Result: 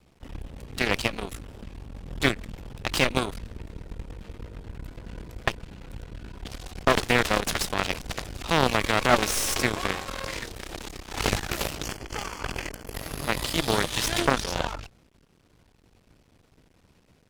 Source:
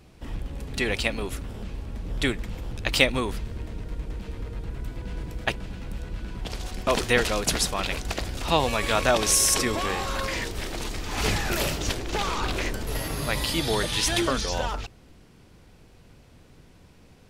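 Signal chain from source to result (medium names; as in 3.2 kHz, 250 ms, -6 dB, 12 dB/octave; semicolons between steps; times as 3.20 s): half-wave rectifier; 11.85–12.94 s: Butterworth band-stop 3.8 kHz, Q 4.8; Chebyshev shaper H 7 -18 dB, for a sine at -1.5 dBFS; loudness maximiser +15.5 dB; slew-rate limiter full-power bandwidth 540 Hz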